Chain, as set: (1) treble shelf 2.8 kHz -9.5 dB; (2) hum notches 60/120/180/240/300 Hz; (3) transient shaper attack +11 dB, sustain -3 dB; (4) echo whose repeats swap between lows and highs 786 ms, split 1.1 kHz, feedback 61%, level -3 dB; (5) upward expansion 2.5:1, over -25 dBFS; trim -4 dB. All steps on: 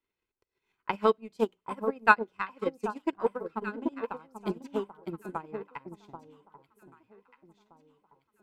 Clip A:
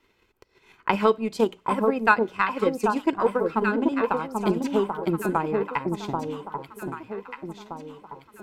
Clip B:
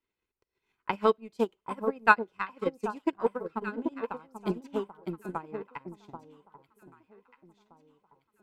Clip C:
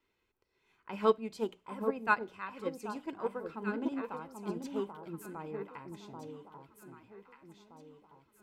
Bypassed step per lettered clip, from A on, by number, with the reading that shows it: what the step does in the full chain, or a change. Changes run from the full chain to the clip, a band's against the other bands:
5, 2 kHz band -5.0 dB; 2, 125 Hz band +2.0 dB; 3, crest factor change -5.5 dB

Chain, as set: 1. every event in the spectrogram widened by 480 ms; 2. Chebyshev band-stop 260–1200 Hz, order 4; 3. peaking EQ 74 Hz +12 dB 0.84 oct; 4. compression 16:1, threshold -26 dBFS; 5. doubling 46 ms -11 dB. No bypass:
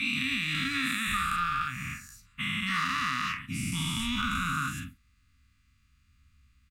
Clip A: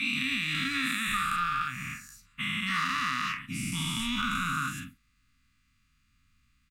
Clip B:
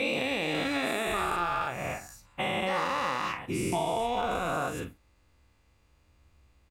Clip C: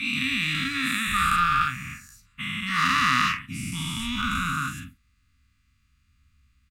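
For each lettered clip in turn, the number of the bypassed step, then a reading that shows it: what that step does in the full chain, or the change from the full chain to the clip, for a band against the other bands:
3, 125 Hz band -2.5 dB; 2, 1 kHz band +5.5 dB; 4, mean gain reduction 3.5 dB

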